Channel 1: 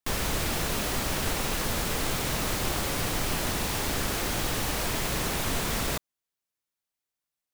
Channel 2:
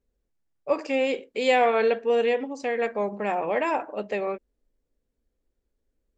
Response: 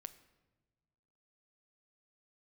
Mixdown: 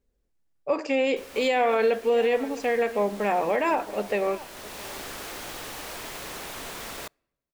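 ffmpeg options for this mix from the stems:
-filter_complex "[0:a]bass=frequency=250:gain=-12,treble=frequency=4000:gain=-2,adelay=1100,volume=-6.5dB,asplit=2[link_01][link_02];[link_02]volume=-16dB[link_03];[1:a]volume=-0.5dB,asplit=4[link_04][link_05][link_06][link_07];[link_05]volume=-3dB[link_08];[link_06]volume=-17dB[link_09];[link_07]apad=whole_len=380619[link_10];[link_01][link_10]sidechaincompress=threshold=-34dB:ratio=6:attack=6.3:release=706[link_11];[2:a]atrim=start_sample=2205[link_12];[link_03][link_08]amix=inputs=2:normalize=0[link_13];[link_13][link_12]afir=irnorm=-1:irlink=0[link_14];[link_09]aecho=0:1:664:1[link_15];[link_11][link_04][link_14][link_15]amix=inputs=4:normalize=0,alimiter=limit=-14.5dB:level=0:latency=1:release=39"

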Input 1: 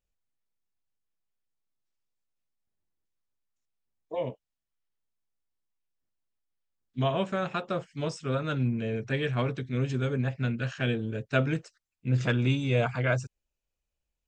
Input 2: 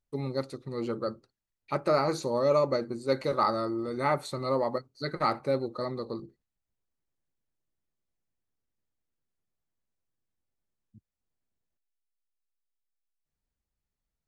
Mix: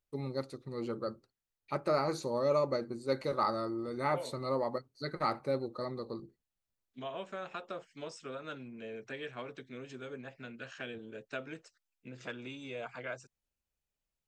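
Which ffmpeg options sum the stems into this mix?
ffmpeg -i stem1.wav -i stem2.wav -filter_complex "[0:a]acompressor=threshold=-33dB:ratio=2.5,highpass=310,volume=-5dB[link_01];[1:a]volume=-5dB[link_02];[link_01][link_02]amix=inputs=2:normalize=0" out.wav

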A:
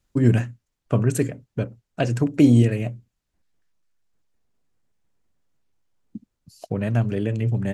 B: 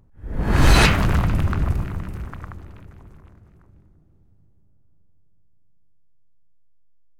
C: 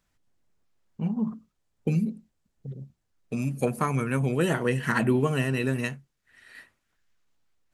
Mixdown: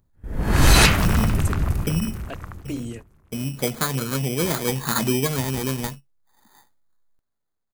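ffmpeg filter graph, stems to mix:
ffmpeg -i stem1.wav -i stem2.wav -i stem3.wav -filter_complex "[0:a]highpass=frequency=300:poles=1,adelay=300,volume=-12.5dB[link_01];[1:a]volume=-1dB[link_02];[2:a]acrusher=samples=16:mix=1:aa=0.000001,volume=0.5dB,asplit=2[link_03][link_04];[link_04]apad=whole_len=354258[link_05];[link_01][link_05]sidechaingate=range=-49dB:threshold=-57dB:ratio=16:detection=peak[link_06];[link_06][link_02][link_03]amix=inputs=3:normalize=0,agate=range=-10dB:threshold=-38dB:ratio=16:detection=peak,highshelf=frequency=5500:gain=12" out.wav

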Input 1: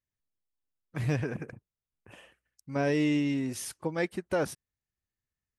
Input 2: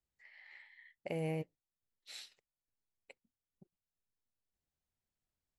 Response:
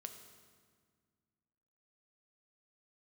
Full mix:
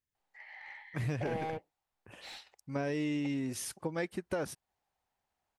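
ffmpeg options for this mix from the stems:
-filter_complex "[0:a]acompressor=threshold=-29dB:ratio=6,volume=-1.5dB[link_01];[1:a]highpass=160,equalizer=frequency=810:width_type=o:width=0.55:gain=11.5,asplit=2[link_02][link_03];[link_03]highpass=frequency=720:poles=1,volume=27dB,asoftclip=type=tanh:threshold=-21dB[link_04];[link_02][link_04]amix=inputs=2:normalize=0,lowpass=frequency=1600:poles=1,volume=-6dB,adelay=150,volume=-8.5dB[link_05];[link_01][link_05]amix=inputs=2:normalize=0"

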